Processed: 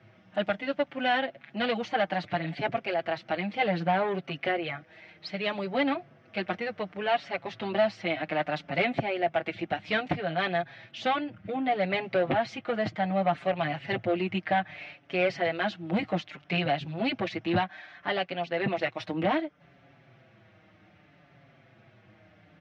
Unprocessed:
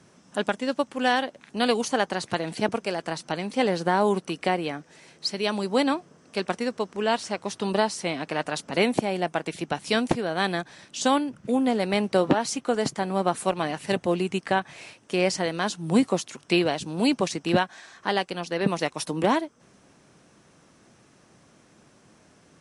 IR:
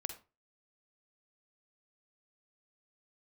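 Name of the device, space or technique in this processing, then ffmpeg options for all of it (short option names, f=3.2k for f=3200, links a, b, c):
barber-pole flanger into a guitar amplifier: -filter_complex "[0:a]asplit=2[a][b];[b]adelay=5.7,afreqshift=-0.64[c];[a][c]amix=inputs=2:normalize=1,asoftclip=type=tanh:threshold=-20.5dB,highpass=78,equalizer=f=110:t=q:w=4:g=9,equalizer=f=240:t=q:w=4:g=-7,equalizer=f=430:t=q:w=4:g=-9,equalizer=f=680:t=q:w=4:g=5,equalizer=f=1k:t=q:w=4:g=-8,equalizer=f=2.1k:t=q:w=4:g=5,lowpass=f=3.4k:w=0.5412,lowpass=f=3.4k:w=1.3066,volume=3dB"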